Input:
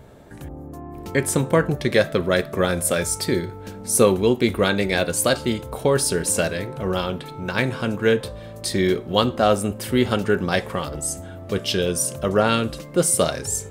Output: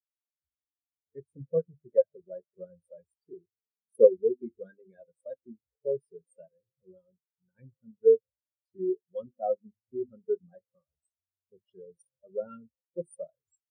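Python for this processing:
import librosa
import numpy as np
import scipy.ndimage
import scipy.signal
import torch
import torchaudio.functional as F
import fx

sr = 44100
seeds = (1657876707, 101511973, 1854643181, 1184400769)

y = fx.hum_notches(x, sr, base_hz=50, count=7)
y = fx.spectral_expand(y, sr, expansion=4.0)
y = F.gain(torch.from_numpy(y), -4.5).numpy()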